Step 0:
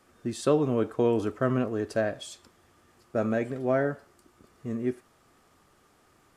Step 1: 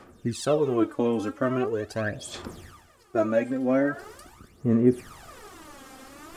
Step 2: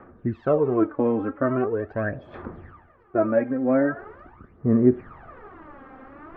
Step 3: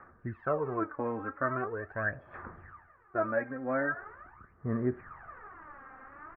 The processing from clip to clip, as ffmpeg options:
ffmpeg -i in.wav -af "areverse,acompressor=mode=upward:threshold=-35dB:ratio=2.5,areverse,aphaser=in_gain=1:out_gain=1:delay=3.8:decay=0.72:speed=0.42:type=sinusoidal" out.wav
ffmpeg -i in.wav -af "lowpass=frequency=1800:width=0.5412,lowpass=frequency=1800:width=1.3066,volume=2.5dB" out.wav
ffmpeg -i in.wav -af "firequalizer=gain_entry='entry(120,0);entry(250,-6);entry(1100,7);entry(1700,10);entry(3600,-13)':delay=0.05:min_phase=1,volume=-9dB" out.wav

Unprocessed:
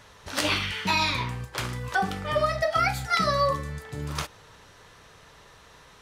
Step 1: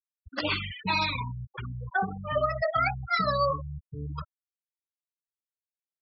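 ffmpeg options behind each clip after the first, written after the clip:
ffmpeg -i in.wav -af "afftfilt=real='re*gte(hypot(re,im),0.0794)':imag='im*gte(hypot(re,im),0.0794)':win_size=1024:overlap=0.75,volume=-2dB" out.wav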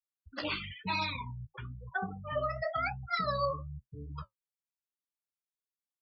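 ffmpeg -i in.wav -af "flanger=delay=9.4:depth=7.1:regen=-45:speed=1:shape=triangular,volume=-2.5dB" out.wav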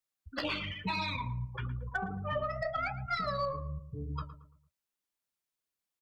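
ffmpeg -i in.wav -filter_complex "[0:a]acompressor=threshold=-36dB:ratio=6,aeval=exprs='0.0355*(cos(1*acos(clip(val(0)/0.0355,-1,1)))-cos(1*PI/2))+0.001*(cos(4*acos(clip(val(0)/0.0355,-1,1)))-cos(4*PI/2))':channel_layout=same,asplit=2[link_01][link_02];[link_02]adelay=113,lowpass=frequency=1100:poles=1,volume=-10dB,asplit=2[link_03][link_04];[link_04]adelay=113,lowpass=frequency=1100:poles=1,volume=0.42,asplit=2[link_05][link_06];[link_06]adelay=113,lowpass=frequency=1100:poles=1,volume=0.42,asplit=2[link_07][link_08];[link_08]adelay=113,lowpass=frequency=1100:poles=1,volume=0.42[link_09];[link_03][link_05][link_07][link_09]amix=inputs=4:normalize=0[link_10];[link_01][link_10]amix=inputs=2:normalize=0,volume=5dB" out.wav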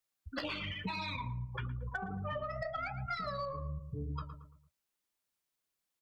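ffmpeg -i in.wav -af "acompressor=threshold=-38dB:ratio=6,volume=2.5dB" out.wav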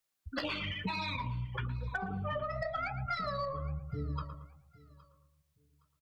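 ffmpeg -i in.wav -af "aecho=1:1:816|1632:0.0794|0.0207,volume=2.5dB" out.wav

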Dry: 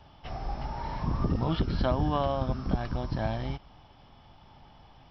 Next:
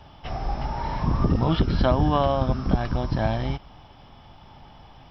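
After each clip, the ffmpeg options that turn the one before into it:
ffmpeg -i in.wav -af "bandreject=frequency=4400:width=17,volume=6.5dB" out.wav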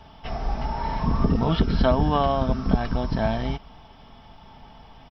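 ffmpeg -i in.wav -af "aecho=1:1:4.5:0.39" out.wav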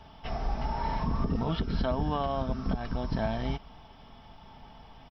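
ffmpeg -i in.wav -af "alimiter=limit=-16dB:level=0:latency=1:release=297,volume=-3.5dB" out.wav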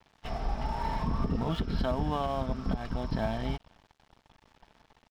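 ffmpeg -i in.wav -af "aeval=exprs='sgn(val(0))*max(abs(val(0))-0.00422,0)':channel_layout=same" out.wav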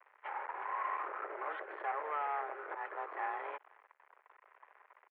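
ffmpeg -i in.wav -af "volume=32dB,asoftclip=hard,volume=-32dB,highpass=frequency=290:width_type=q:width=0.5412,highpass=frequency=290:width_type=q:width=1.307,lowpass=frequency=2000:width_type=q:width=0.5176,lowpass=frequency=2000:width_type=q:width=0.7071,lowpass=frequency=2000:width_type=q:width=1.932,afreqshift=150,tiltshelf=frequency=680:gain=-6.5,volume=-1dB" out.wav

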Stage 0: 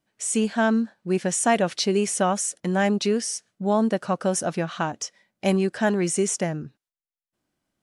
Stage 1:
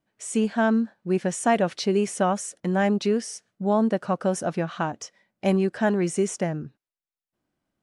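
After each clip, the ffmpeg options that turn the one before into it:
ffmpeg -i in.wav -af "highshelf=frequency=3000:gain=-8.5" out.wav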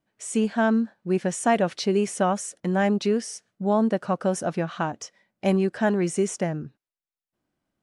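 ffmpeg -i in.wav -af anull out.wav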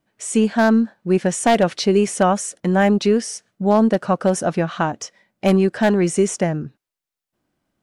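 ffmpeg -i in.wav -af "aeval=exprs='0.398*(cos(1*acos(clip(val(0)/0.398,-1,1)))-cos(1*PI/2))+0.00251*(cos(6*acos(clip(val(0)/0.398,-1,1)))-cos(6*PI/2))':channel_layout=same,aeval=exprs='0.224*(abs(mod(val(0)/0.224+3,4)-2)-1)':channel_layout=same,volume=6.5dB" out.wav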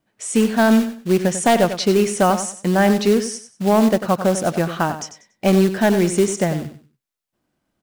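ffmpeg -i in.wav -filter_complex "[0:a]acrossover=split=2100[link_01][link_02];[link_01]acrusher=bits=4:mode=log:mix=0:aa=0.000001[link_03];[link_03][link_02]amix=inputs=2:normalize=0,aecho=1:1:95|190|285:0.282|0.0705|0.0176" out.wav

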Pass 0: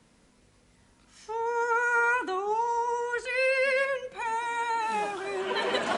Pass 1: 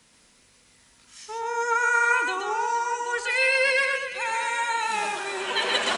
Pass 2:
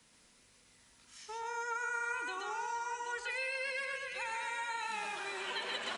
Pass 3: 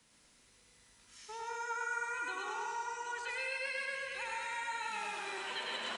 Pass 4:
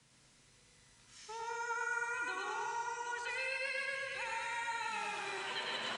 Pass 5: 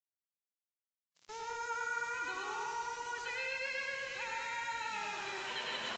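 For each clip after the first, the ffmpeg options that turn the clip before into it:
ffmpeg -i in.wav -filter_complex "[0:a]tiltshelf=frequency=1300:gain=-7,asplit=2[link_01][link_02];[link_02]aecho=0:1:127|472|776:0.596|0.15|0.2[link_03];[link_01][link_03]amix=inputs=2:normalize=0,volume=2.5dB" out.wav
ffmpeg -i in.wav -filter_complex "[0:a]acrossover=split=210|1000|4900[link_01][link_02][link_03][link_04];[link_01]acompressor=threshold=-55dB:ratio=4[link_05];[link_02]acompressor=threshold=-40dB:ratio=4[link_06];[link_03]acompressor=threshold=-32dB:ratio=4[link_07];[link_04]acompressor=threshold=-49dB:ratio=4[link_08];[link_05][link_06][link_07][link_08]amix=inputs=4:normalize=0,volume=-6.5dB" out.wav
ffmpeg -i in.wav -af "aecho=1:1:101|202|303|404|505|606|707|808:0.631|0.36|0.205|0.117|0.0666|0.038|0.0216|0.0123,volume=-2.5dB" out.wav
ffmpeg -i in.wav -af "lowpass=frequency=9800:width=0.5412,lowpass=frequency=9800:width=1.3066,equalizer=frequency=130:width_type=o:width=0.31:gain=14.5" out.wav
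ffmpeg -i in.wav -af "aeval=exprs='val(0)*gte(abs(val(0)),0.00501)':channel_layout=same" -ar 16000 -c:a libvorbis -b:a 48k out.ogg

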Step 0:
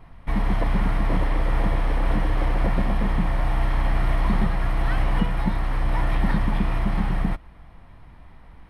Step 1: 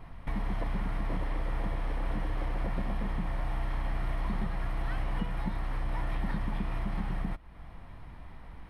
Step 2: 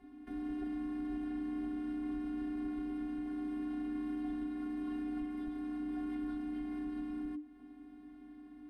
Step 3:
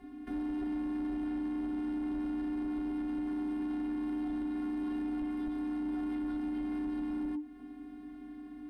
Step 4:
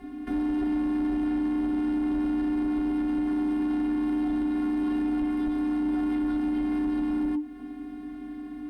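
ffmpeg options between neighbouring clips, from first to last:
ffmpeg -i in.wav -af "acompressor=threshold=-37dB:ratio=2" out.wav
ffmpeg -i in.wav -af "afftfilt=real='hypot(re,im)*cos(PI*b)':imag='0':win_size=512:overlap=0.75,afreqshift=-300,volume=-7dB" out.wav
ffmpeg -i in.wav -af "alimiter=level_in=10dB:limit=-24dB:level=0:latency=1:release=37,volume=-10dB,asoftclip=type=tanh:threshold=-35dB,volume=6.5dB" out.wav
ffmpeg -i in.wav -af "volume=8.5dB" -ar 48000 -c:a libopus -b:a 64k out.opus

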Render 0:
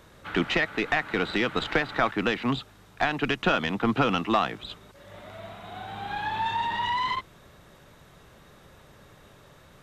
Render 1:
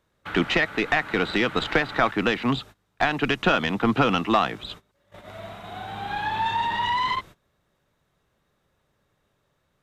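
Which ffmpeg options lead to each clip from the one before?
ffmpeg -i in.wav -af "agate=range=-21dB:threshold=-44dB:ratio=16:detection=peak,volume=3dB" out.wav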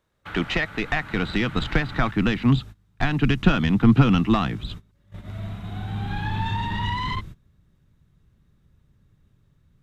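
ffmpeg -i in.wav -af "asubboost=boost=10.5:cutoff=190,volume=-2.5dB" out.wav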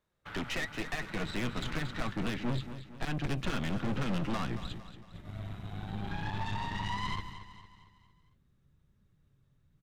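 ffmpeg -i in.wav -filter_complex "[0:a]flanger=delay=4.6:depth=3.9:regen=65:speed=1:shape=triangular,aeval=exprs='(tanh(35.5*val(0)+0.7)-tanh(0.7))/35.5':channel_layout=same,asplit=2[link_01][link_02];[link_02]aecho=0:1:228|456|684|912|1140:0.251|0.121|0.0579|0.0278|0.0133[link_03];[link_01][link_03]amix=inputs=2:normalize=0" out.wav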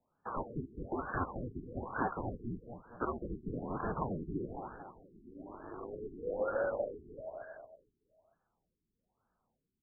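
ffmpeg -i in.wav -af "highpass=280,highpass=frequency=470:width_type=q:width=0.5412,highpass=frequency=470:width_type=q:width=1.307,lowpass=frequency=3200:width_type=q:width=0.5176,lowpass=frequency=3200:width_type=q:width=0.7071,lowpass=frequency=3200:width_type=q:width=1.932,afreqshift=-370,afftfilt=real='re*lt(b*sr/1024,410*pow(1800/410,0.5+0.5*sin(2*PI*1.1*pts/sr)))':imag='im*lt(b*sr/1024,410*pow(1800/410,0.5+0.5*sin(2*PI*1.1*pts/sr)))':win_size=1024:overlap=0.75,volume=6.5dB" out.wav

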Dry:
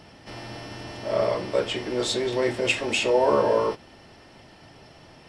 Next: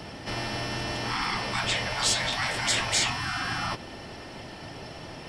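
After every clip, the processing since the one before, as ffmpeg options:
ffmpeg -i in.wav -filter_complex "[0:a]afftfilt=real='re*lt(hypot(re,im),0.0891)':imag='im*lt(hypot(re,im),0.0891)':win_size=1024:overlap=0.75,acrossover=split=200|820[link_01][link_02][link_03];[link_02]alimiter=level_in=17.5dB:limit=-24dB:level=0:latency=1,volume=-17.5dB[link_04];[link_01][link_04][link_03]amix=inputs=3:normalize=0,volume=8.5dB" out.wav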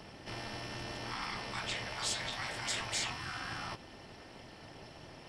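ffmpeg -i in.wav -af "tremolo=f=230:d=0.71,volume=-7.5dB" out.wav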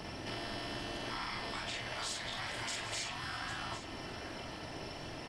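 ffmpeg -i in.wav -filter_complex "[0:a]acompressor=threshold=-44dB:ratio=6,asplit=2[link_01][link_02];[link_02]aecho=0:1:44|47|802:0.562|0.473|0.282[link_03];[link_01][link_03]amix=inputs=2:normalize=0,volume=5.5dB" out.wav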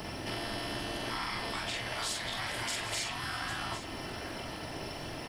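ffmpeg -i in.wav -af "aexciter=amount=3.5:drive=4.5:freq=9900,volume=4dB" out.wav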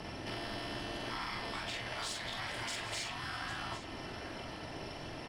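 ffmpeg -i in.wav -af "adynamicsmooth=sensitivity=7:basefreq=7700,volume=-3.5dB" out.wav

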